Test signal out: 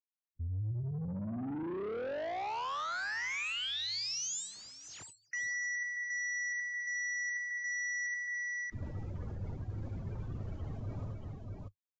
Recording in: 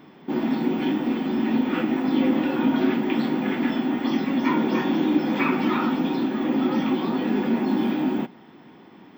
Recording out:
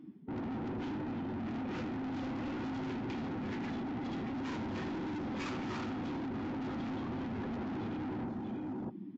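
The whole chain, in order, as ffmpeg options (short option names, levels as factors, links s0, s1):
-filter_complex "[0:a]afftdn=nr=28:nf=-34,volume=13.3,asoftclip=hard,volume=0.075,highshelf=f=3900:g=-2.5,asplit=2[s0][s1];[s1]aecho=0:1:76|280|636:0.422|0.158|0.224[s2];[s0][s2]amix=inputs=2:normalize=0,acontrast=49,asoftclip=type=tanh:threshold=0.0531,equalizer=f=100:t=o:w=0.88:g=14,areverse,acompressor=threshold=0.0126:ratio=5,areverse" -ar 16000 -c:a libvorbis -b:a 48k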